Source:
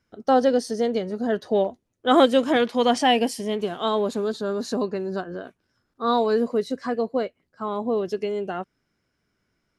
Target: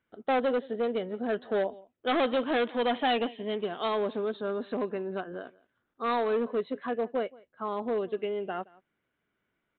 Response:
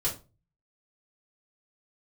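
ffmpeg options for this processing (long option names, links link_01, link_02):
-af "aecho=1:1:172:0.0668,aresample=8000,asoftclip=type=hard:threshold=-18dB,aresample=44100,lowshelf=frequency=170:gain=-11,volume=-3.5dB"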